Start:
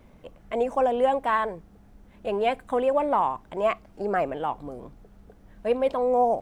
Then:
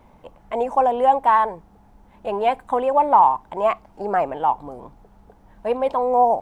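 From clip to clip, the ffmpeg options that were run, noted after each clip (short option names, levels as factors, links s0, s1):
-af "equalizer=f=890:t=o:w=0.58:g=12.5"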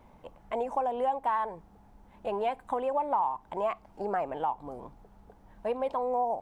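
-af "acompressor=threshold=0.0631:ratio=2.5,volume=0.562"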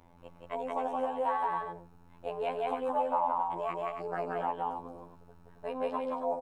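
-af "afftfilt=real='hypot(re,im)*cos(PI*b)':imag='0':win_size=2048:overlap=0.75,aecho=1:1:174.9|274.1:0.891|0.447"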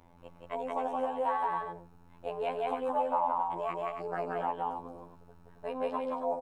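-af anull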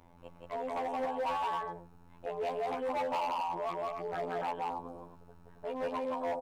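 -af "volume=31.6,asoftclip=hard,volume=0.0316"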